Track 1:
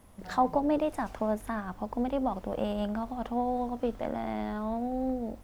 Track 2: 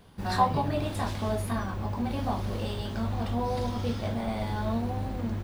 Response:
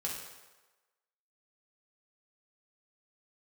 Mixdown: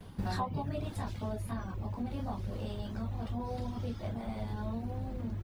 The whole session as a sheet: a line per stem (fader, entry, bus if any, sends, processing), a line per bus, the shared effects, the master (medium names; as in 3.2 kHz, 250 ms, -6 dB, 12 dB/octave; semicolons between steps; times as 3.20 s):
-16.0 dB, 0.00 s, no send, none
+2.0 dB, 5.7 ms, polarity flipped, no send, reverb removal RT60 0.55 s; bass shelf 340 Hz +7 dB; auto duck -11 dB, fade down 1.15 s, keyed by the first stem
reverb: none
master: compression 4:1, threshold -32 dBFS, peak gain reduction 12 dB